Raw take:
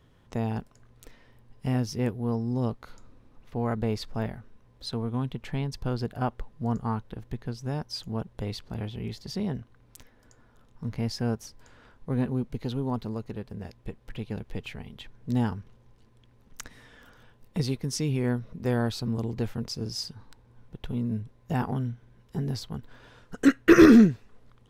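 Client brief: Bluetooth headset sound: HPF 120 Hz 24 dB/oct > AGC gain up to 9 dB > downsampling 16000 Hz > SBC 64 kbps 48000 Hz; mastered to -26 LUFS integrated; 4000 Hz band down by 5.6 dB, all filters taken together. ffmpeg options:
-af "highpass=f=120:w=0.5412,highpass=f=120:w=1.3066,equalizer=f=4k:t=o:g=-7.5,dynaudnorm=m=9dB,aresample=16000,aresample=44100,volume=0.5dB" -ar 48000 -c:a sbc -b:a 64k

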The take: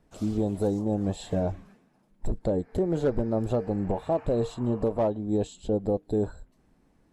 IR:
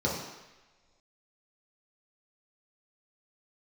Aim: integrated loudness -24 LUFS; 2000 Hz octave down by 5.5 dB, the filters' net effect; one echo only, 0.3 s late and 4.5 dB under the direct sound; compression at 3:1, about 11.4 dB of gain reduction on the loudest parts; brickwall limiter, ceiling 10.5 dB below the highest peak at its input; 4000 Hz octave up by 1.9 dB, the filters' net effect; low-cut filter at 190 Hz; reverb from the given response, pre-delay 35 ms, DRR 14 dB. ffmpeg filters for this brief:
-filter_complex "[0:a]highpass=190,equalizer=f=2k:t=o:g=-9,equalizer=f=4k:t=o:g=4.5,acompressor=threshold=-38dB:ratio=3,alimiter=level_in=10.5dB:limit=-24dB:level=0:latency=1,volume=-10.5dB,aecho=1:1:300:0.596,asplit=2[a][b];[1:a]atrim=start_sample=2205,adelay=35[c];[b][c]afir=irnorm=-1:irlink=0,volume=-24dB[d];[a][d]amix=inputs=2:normalize=0,volume=19.5dB"

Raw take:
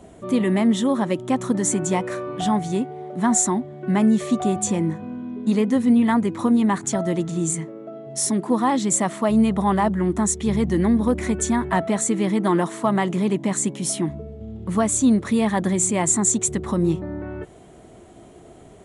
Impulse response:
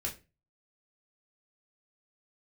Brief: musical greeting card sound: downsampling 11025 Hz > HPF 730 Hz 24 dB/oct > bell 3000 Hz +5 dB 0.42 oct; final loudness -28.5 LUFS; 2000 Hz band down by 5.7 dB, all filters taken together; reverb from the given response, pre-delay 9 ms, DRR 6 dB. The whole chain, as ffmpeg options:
-filter_complex "[0:a]equalizer=f=2k:t=o:g=-7.5,asplit=2[a][b];[1:a]atrim=start_sample=2205,adelay=9[c];[b][c]afir=irnorm=-1:irlink=0,volume=-7.5dB[d];[a][d]amix=inputs=2:normalize=0,aresample=11025,aresample=44100,highpass=f=730:w=0.5412,highpass=f=730:w=1.3066,equalizer=f=3k:t=o:w=0.42:g=5,volume=3.5dB"

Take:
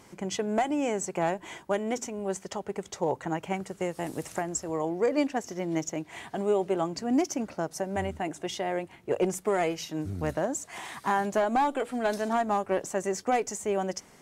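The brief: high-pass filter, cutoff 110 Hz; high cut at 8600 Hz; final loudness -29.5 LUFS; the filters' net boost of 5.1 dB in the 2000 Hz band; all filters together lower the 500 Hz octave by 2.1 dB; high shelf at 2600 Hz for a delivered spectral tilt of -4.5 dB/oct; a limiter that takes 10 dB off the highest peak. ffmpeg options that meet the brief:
-af "highpass=110,lowpass=8.6k,equalizer=f=500:t=o:g=-3,equalizer=f=2k:t=o:g=8,highshelf=f=2.6k:g=-4,volume=4.5dB,alimiter=limit=-17.5dB:level=0:latency=1"

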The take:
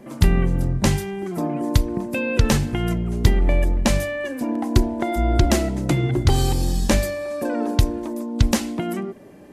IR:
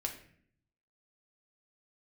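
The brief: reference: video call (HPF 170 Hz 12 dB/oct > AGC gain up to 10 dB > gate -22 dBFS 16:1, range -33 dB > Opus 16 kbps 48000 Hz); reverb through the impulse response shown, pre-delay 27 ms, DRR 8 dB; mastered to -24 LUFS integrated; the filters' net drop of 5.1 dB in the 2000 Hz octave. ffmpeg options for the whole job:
-filter_complex "[0:a]equalizer=f=2k:t=o:g=-6.5,asplit=2[a][b];[1:a]atrim=start_sample=2205,adelay=27[c];[b][c]afir=irnorm=-1:irlink=0,volume=-9dB[d];[a][d]amix=inputs=2:normalize=0,highpass=170,dynaudnorm=m=10dB,agate=range=-33dB:threshold=-22dB:ratio=16,volume=1.5dB" -ar 48000 -c:a libopus -b:a 16k

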